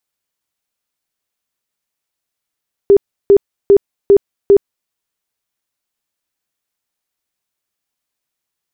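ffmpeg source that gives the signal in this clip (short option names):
-f lavfi -i "aevalsrc='0.708*sin(2*PI*400*mod(t,0.4))*lt(mod(t,0.4),27/400)':d=2:s=44100"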